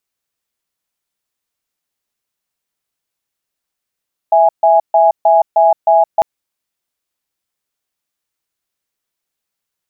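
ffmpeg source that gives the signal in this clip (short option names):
-f lavfi -i "aevalsrc='0.355*(sin(2*PI*659*t)+sin(2*PI*829*t))*clip(min(mod(t,0.31),0.17-mod(t,0.31))/0.005,0,1)':d=1.9:s=44100"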